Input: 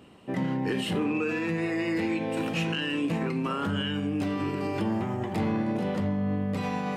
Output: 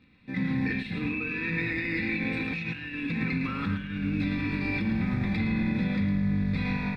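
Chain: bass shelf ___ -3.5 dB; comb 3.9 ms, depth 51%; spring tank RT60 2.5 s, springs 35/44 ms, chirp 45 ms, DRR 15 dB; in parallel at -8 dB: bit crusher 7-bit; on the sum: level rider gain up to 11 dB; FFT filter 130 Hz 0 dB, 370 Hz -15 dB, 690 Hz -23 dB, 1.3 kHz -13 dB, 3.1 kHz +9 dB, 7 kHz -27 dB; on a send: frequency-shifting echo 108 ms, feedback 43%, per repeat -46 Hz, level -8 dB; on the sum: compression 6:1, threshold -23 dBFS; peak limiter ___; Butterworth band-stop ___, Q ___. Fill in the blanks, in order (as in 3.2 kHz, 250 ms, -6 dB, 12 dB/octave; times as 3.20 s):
130 Hz, -18 dBFS, 3 kHz, 2.4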